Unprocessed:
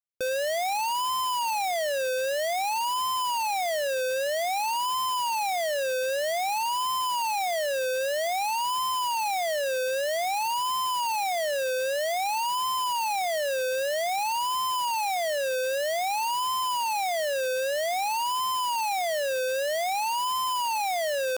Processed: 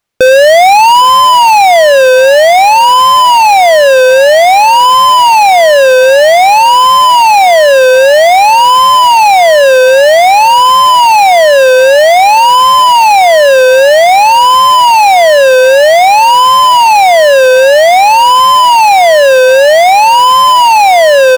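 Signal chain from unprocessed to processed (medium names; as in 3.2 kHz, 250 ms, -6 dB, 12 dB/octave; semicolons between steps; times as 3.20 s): low-pass 3.1 kHz 6 dB/octave; feedback delay 808 ms, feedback 43%, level -21 dB; loudness maximiser +28.5 dB; trim -1 dB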